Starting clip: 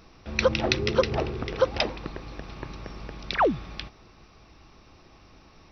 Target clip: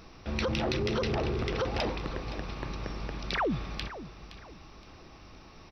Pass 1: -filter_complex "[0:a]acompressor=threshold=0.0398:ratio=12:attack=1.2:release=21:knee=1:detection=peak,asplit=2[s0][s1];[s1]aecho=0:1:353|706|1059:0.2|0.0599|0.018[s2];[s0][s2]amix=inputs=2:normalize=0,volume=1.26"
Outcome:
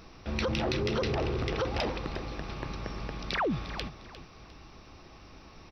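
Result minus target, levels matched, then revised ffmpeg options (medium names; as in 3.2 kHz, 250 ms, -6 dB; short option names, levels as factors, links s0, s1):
echo 165 ms early
-filter_complex "[0:a]acompressor=threshold=0.0398:ratio=12:attack=1.2:release=21:knee=1:detection=peak,asplit=2[s0][s1];[s1]aecho=0:1:518|1036|1554:0.2|0.0599|0.018[s2];[s0][s2]amix=inputs=2:normalize=0,volume=1.26"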